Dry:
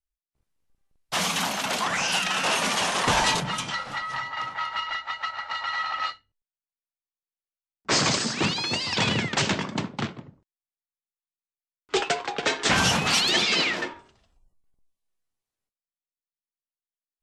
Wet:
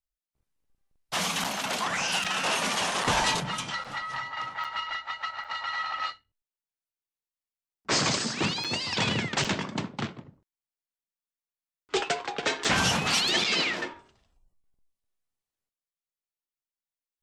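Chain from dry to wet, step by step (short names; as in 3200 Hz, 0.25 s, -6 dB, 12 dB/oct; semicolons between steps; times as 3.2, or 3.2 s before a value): crackling interface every 0.80 s, samples 256, zero, from 0.64; gain -3 dB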